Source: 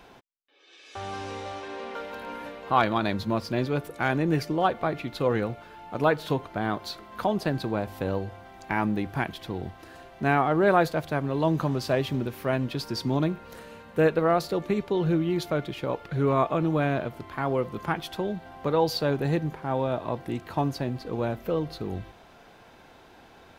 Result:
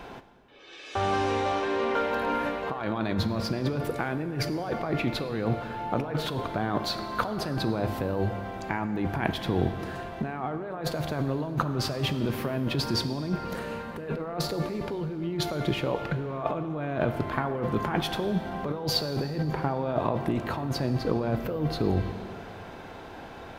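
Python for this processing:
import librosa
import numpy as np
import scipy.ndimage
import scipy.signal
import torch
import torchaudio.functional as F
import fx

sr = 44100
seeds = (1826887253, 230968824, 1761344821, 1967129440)

y = fx.high_shelf(x, sr, hz=3000.0, db=-7.5)
y = fx.over_compress(y, sr, threshold_db=-33.0, ratio=-1.0)
y = fx.rev_plate(y, sr, seeds[0], rt60_s=2.5, hf_ratio=0.75, predelay_ms=0, drr_db=9.5)
y = y * 10.0 ** (4.0 / 20.0)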